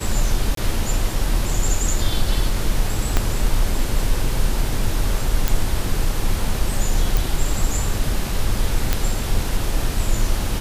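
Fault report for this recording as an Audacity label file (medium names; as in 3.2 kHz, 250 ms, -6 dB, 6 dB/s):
0.550000	0.570000	dropout 23 ms
3.170000	3.170000	pop -3 dBFS
5.480000	5.480000	pop
7.170000	7.170000	pop
8.930000	8.930000	pop -3 dBFS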